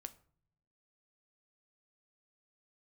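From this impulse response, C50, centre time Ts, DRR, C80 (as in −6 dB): 18.0 dB, 4 ms, 10.0 dB, 22.0 dB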